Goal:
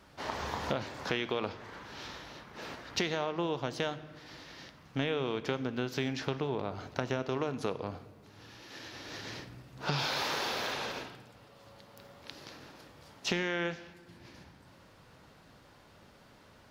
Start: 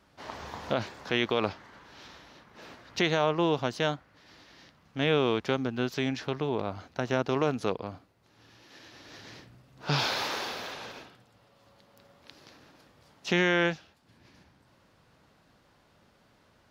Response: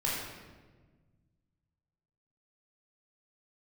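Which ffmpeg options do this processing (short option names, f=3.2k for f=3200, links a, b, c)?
-filter_complex "[0:a]acompressor=threshold=-35dB:ratio=5,asplit=2[a][b];[1:a]atrim=start_sample=2205,highshelf=f=7.6k:g=7[c];[b][c]afir=irnorm=-1:irlink=0,volume=-18.5dB[d];[a][d]amix=inputs=2:normalize=0,volume=4dB"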